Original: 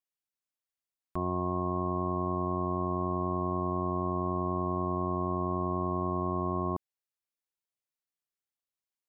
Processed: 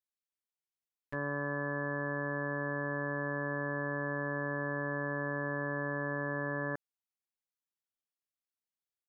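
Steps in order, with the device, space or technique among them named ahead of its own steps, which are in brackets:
chipmunk voice (pitch shifter +8 semitones)
level −4.5 dB

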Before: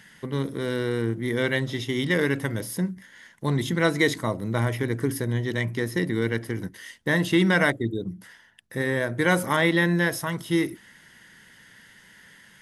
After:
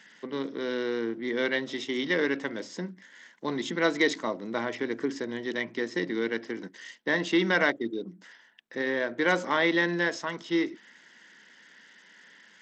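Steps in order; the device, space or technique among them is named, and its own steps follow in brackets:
Bluetooth headset (high-pass filter 230 Hz 24 dB per octave; downsampling to 16,000 Hz; level −2.5 dB; SBC 64 kbit/s 32,000 Hz)

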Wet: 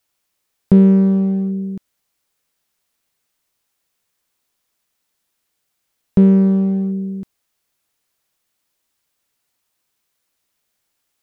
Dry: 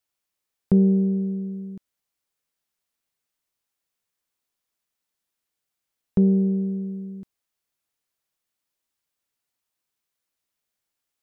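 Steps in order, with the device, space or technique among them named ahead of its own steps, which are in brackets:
parallel distortion (in parallel at −5.5 dB: hard clipping −27.5 dBFS, distortion −4 dB)
on the sum: level +6.5 dB

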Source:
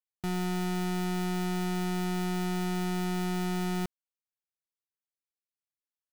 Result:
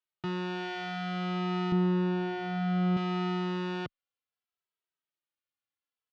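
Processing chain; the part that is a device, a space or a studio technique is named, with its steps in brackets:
barber-pole flanger into a guitar amplifier (barber-pole flanger 2.7 ms −0.61 Hz; soft clipping −30.5 dBFS, distortion −16 dB; loudspeaker in its box 84–4,300 Hz, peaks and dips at 210 Hz −6 dB, 1,300 Hz +5 dB, 3,000 Hz +4 dB)
0:01.72–0:02.97: spectral tilt −3 dB per octave
level +5 dB

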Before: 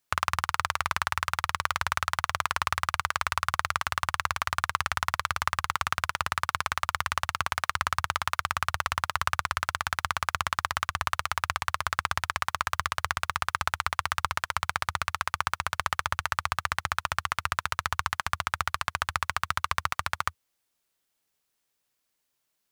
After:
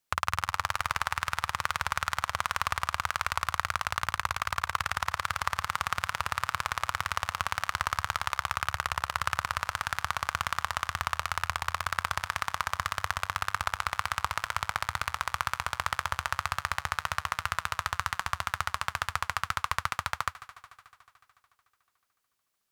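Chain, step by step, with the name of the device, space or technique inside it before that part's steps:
multi-head tape echo (echo machine with several playback heads 73 ms, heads second and third, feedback 66%, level −19.5 dB; tape wow and flutter)
level −2 dB

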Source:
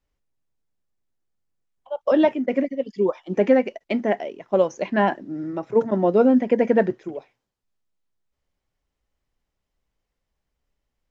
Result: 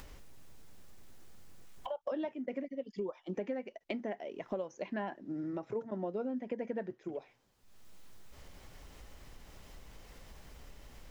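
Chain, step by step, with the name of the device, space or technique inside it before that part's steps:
upward and downward compression (upward compression, threshold −24 dBFS; downward compressor 5 to 1, threshold −33 dBFS, peak gain reduction 19 dB)
level −3.5 dB

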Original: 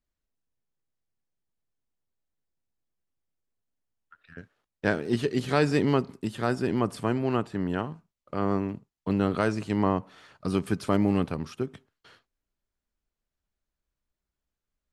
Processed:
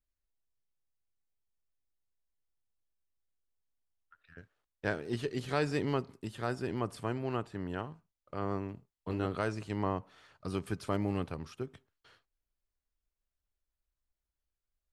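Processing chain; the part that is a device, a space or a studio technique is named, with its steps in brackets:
low shelf boost with a cut just above (low-shelf EQ 74 Hz +7.5 dB; parametric band 210 Hz −5.5 dB 1.1 octaves)
0:08.75–0:09.26: double-tracking delay 23 ms −6 dB
level −7 dB

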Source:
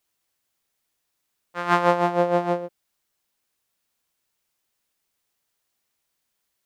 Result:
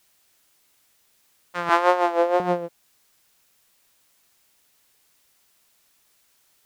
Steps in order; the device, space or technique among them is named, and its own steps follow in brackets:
noise-reduction cassette on a plain deck (one half of a high-frequency compander encoder only; tape wow and flutter; white noise bed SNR 38 dB)
0:01.69–0:02.40: Butterworth high-pass 320 Hz 36 dB per octave
level +1 dB

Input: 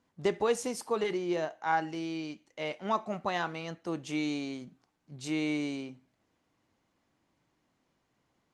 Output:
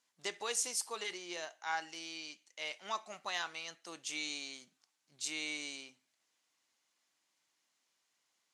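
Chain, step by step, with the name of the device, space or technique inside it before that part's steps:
piezo pickup straight into a mixer (low-pass filter 8,600 Hz 12 dB per octave; first difference)
level +8.5 dB

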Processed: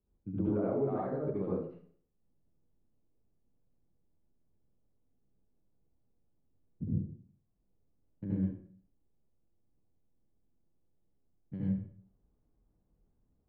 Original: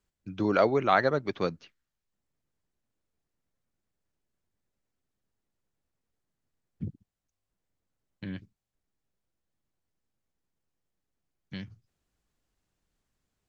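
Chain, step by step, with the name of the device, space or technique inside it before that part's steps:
television next door (downward compressor 4 to 1, threshold −35 dBFS, peak gain reduction 15 dB; low-pass filter 520 Hz 12 dB per octave; convolution reverb RT60 0.55 s, pre-delay 65 ms, DRR −7 dB)

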